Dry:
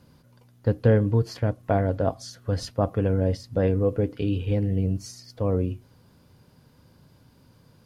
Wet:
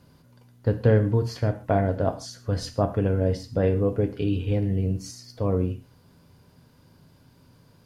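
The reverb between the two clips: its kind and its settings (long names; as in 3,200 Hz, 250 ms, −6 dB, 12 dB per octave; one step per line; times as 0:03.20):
reverb whose tail is shaped and stops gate 170 ms falling, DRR 7.5 dB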